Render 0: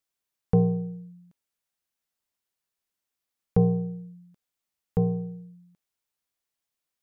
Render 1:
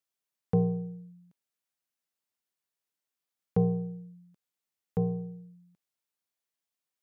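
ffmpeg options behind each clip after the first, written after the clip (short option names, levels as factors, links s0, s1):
-af "highpass=100,volume=0.631"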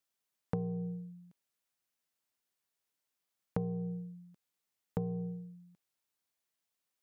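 -af "acompressor=threshold=0.0224:ratio=12,volume=1.26"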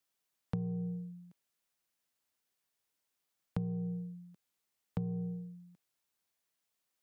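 -filter_complex "[0:a]acrossover=split=220|3000[s0][s1][s2];[s1]acompressor=threshold=0.00398:ratio=6[s3];[s0][s3][s2]amix=inputs=3:normalize=0,volume=1.26"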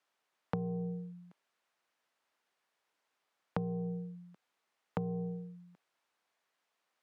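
-af "bandpass=f=1000:t=q:w=0.63:csg=0,volume=3.35"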